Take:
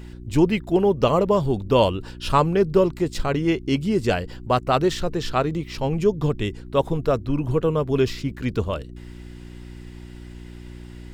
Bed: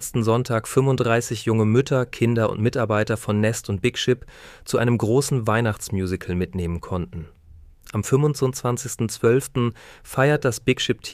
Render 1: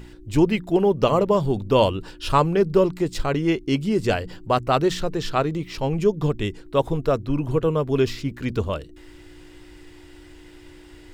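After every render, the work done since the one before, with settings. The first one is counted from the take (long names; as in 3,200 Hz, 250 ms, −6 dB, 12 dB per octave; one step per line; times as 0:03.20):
hum removal 60 Hz, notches 4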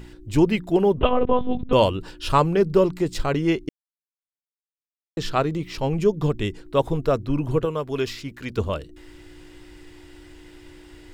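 0:00.97–0:01.73: one-pitch LPC vocoder at 8 kHz 250 Hz
0:03.69–0:05.17: silence
0:07.65–0:08.58: low-shelf EQ 490 Hz −8.5 dB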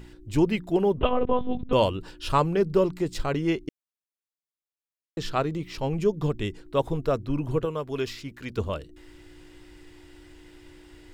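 level −4 dB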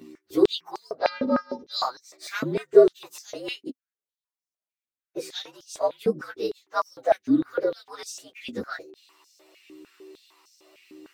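partials spread apart or drawn together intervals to 116%
high-pass on a step sequencer 6.6 Hz 260–5,700 Hz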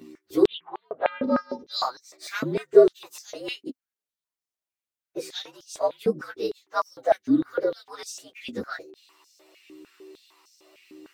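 0:00.46–0:01.24: elliptic low-pass filter 3,300 Hz
0:02.91–0:03.41: low-shelf EQ 220 Hz −10 dB
0:06.95–0:07.83: notch filter 2,500 Hz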